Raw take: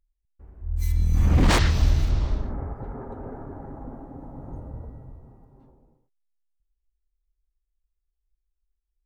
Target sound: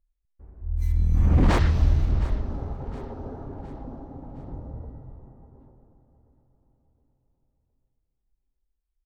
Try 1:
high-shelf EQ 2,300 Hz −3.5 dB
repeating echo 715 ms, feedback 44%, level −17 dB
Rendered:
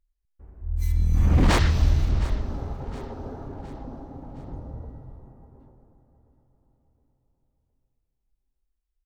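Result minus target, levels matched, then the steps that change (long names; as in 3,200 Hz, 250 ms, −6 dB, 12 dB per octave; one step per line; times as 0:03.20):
4,000 Hz band +6.5 dB
change: high-shelf EQ 2,300 Hz −13 dB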